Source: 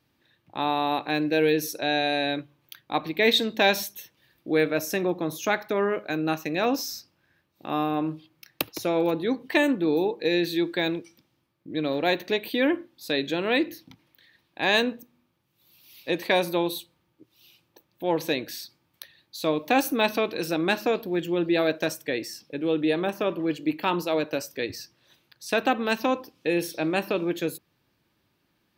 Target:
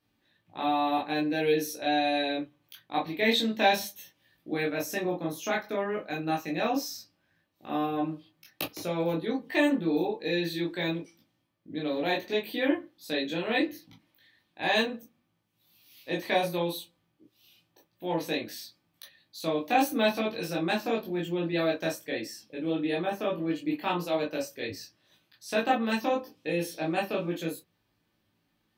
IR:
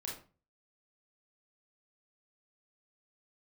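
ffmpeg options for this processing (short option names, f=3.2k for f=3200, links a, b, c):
-filter_complex "[1:a]atrim=start_sample=2205,afade=t=out:st=0.17:d=0.01,atrim=end_sample=7938,asetrate=83790,aresample=44100[a];[0:a][a]afir=irnorm=-1:irlink=0,volume=2.5dB"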